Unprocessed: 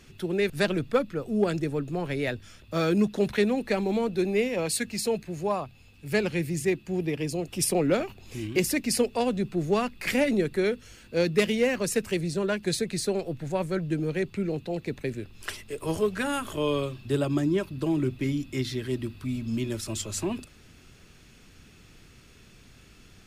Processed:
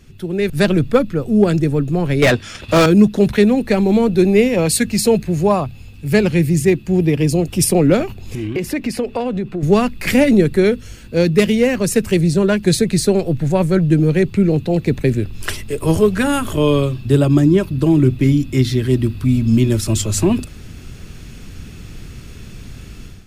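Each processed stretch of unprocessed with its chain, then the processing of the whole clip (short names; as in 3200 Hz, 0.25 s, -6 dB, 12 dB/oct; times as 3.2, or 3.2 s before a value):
2.22–2.86 LPF 11000 Hz + transient shaper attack +2 dB, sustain -9 dB + overdrive pedal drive 27 dB, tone 5100 Hz, clips at -14 dBFS
8.35–9.63 compressor 10:1, threshold -28 dBFS + tone controls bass -8 dB, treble -13 dB
whole clip: low shelf 260 Hz +11 dB; AGC; high shelf 9300 Hz +4.5 dB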